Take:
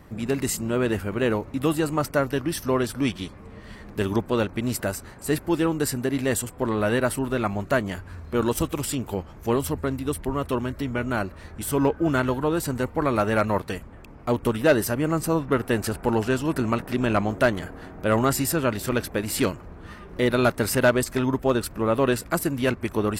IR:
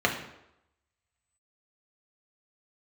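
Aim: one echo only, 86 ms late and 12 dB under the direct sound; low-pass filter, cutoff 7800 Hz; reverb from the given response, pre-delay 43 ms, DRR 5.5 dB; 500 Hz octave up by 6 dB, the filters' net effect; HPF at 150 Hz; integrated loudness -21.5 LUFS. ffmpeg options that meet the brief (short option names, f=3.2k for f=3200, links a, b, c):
-filter_complex "[0:a]highpass=150,lowpass=7.8k,equalizer=f=500:t=o:g=7.5,aecho=1:1:86:0.251,asplit=2[a][b];[1:a]atrim=start_sample=2205,adelay=43[c];[b][c]afir=irnorm=-1:irlink=0,volume=-19.5dB[d];[a][d]amix=inputs=2:normalize=0,volume=-1.5dB"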